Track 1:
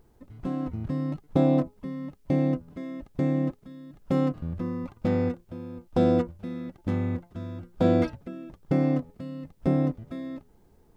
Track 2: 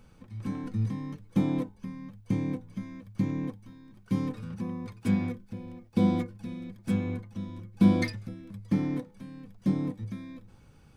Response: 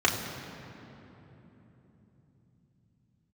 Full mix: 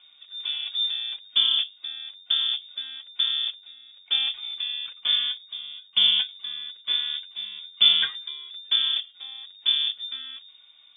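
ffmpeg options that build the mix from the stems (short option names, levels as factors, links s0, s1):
-filter_complex "[0:a]aemphasis=mode=production:type=riaa,agate=range=0.447:threshold=0.00562:ratio=16:detection=peak,volume=1.06[s0];[1:a]volume=1.19[s1];[s0][s1]amix=inputs=2:normalize=0,lowpass=f=3100:t=q:w=0.5098,lowpass=f=3100:t=q:w=0.6013,lowpass=f=3100:t=q:w=0.9,lowpass=f=3100:t=q:w=2.563,afreqshift=-3700"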